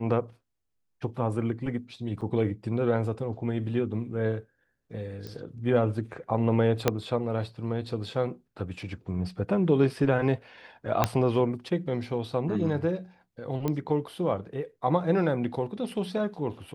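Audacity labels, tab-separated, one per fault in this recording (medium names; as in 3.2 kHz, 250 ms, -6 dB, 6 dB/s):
2.210000	2.220000	dropout 6.8 ms
5.270000	5.270000	pop -25 dBFS
6.880000	6.880000	pop -7 dBFS
11.040000	11.040000	pop -7 dBFS
13.680000	13.680000	pop -16 dBFS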